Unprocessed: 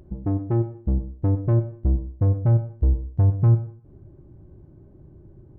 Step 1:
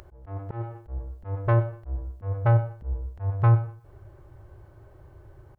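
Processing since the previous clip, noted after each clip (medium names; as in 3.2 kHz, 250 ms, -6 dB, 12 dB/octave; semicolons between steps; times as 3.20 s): FFT filter 110 Hz 0 dB, 210 Hz -20 dB, 460 Hz +3 dB, 1.4 kHz +15 dB; slow attack 245 ms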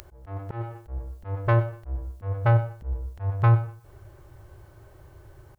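treble shelf 2.3 kHz +12 dB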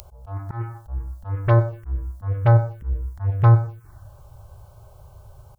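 touch-sensitive phaser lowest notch 290 Hz, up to 2.8 kHz, full sweep at -18 dBFS; trim +5 dB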